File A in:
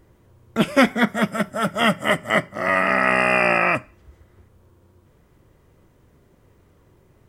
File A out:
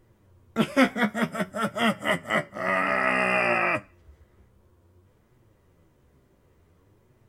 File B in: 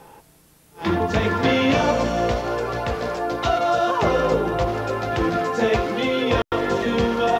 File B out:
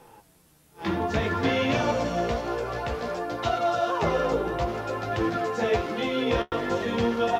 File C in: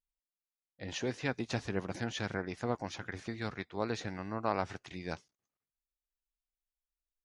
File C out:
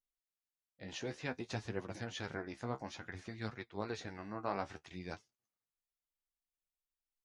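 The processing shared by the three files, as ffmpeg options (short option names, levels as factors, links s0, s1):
-af "flanger=delay=7.9:depth=8:regen=38:speed=0.56:shape=triangular,volume=0.841"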